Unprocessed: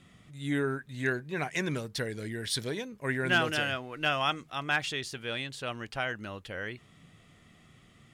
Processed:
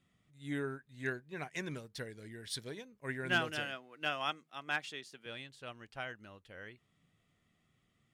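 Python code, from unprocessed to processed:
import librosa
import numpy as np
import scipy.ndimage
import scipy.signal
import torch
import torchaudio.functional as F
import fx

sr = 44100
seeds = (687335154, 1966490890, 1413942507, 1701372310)

y = fx.highpass(x, sr, hz=160.0, slope=24, at=(3.65, 5.26))
y = fx.upward_expand(y, sr, threshold_db=-46.0, expansion=1.5)
y = F.gain(torch.from_numpy(y), -5.0).numpy()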